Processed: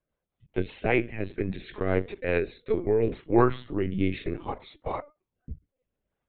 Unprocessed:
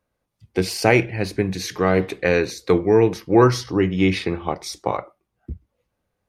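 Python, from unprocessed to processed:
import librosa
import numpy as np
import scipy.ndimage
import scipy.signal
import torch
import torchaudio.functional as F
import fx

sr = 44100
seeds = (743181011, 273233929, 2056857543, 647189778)

y = fx.lpc_vocoder(x, sr, seeds[0], excitation='pitch_kept', order=16)
y = fx.rotary_switch(y, sr, hz=5.0, then_hz=0.65, switch_at_s=2.4)
y = y * librosa.db_to_amplitude(-6.0)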